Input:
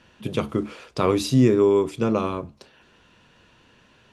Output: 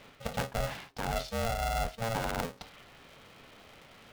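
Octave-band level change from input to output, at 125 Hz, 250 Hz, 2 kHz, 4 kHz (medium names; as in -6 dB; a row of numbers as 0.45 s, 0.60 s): -11.5 dB, -19.5 dB, -0.5 dB, -5.0 dB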